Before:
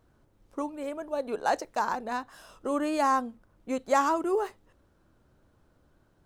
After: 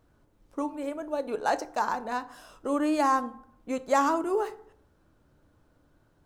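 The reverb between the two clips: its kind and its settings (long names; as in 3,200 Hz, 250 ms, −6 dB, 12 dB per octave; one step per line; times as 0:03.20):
feedback delay network reverb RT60 0.64 s, low-frequency decay 1.1×, high-frequency decay 0.5×, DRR 11.5 dB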